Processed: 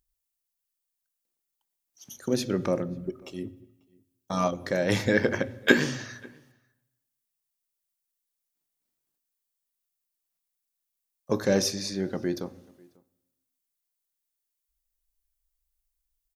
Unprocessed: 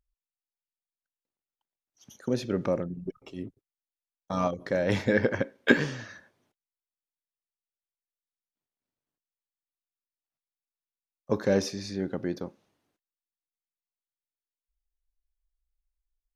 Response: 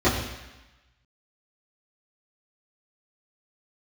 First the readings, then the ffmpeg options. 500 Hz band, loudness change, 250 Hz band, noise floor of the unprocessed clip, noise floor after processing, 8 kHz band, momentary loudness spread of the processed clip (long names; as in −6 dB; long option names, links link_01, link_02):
+1.0 dB, +1.5 dB, +1.5 dB, below −85 dBFS, −84 dBFS, +9.0 dB, 16 LU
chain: -filter_complex "[0:a]crystalizer=i=2.5:c=0,asplit=2[link_01][link_02];[link_02]adelay=542.3,volume=-27dB,highshelf=frequency=4000:gain=-12.2[link_03];[link_01][link_03]amix=inputs=2:normalize=0,asplit=2[link_04][link_05];[1:a]atrim=start_sample=2205[link_06];[link_05][link_06]afir=irnorm=-1:irlink=0,volume=-32dB[link_07];[link_04][link_07]amix=inputs=2:normalize=0"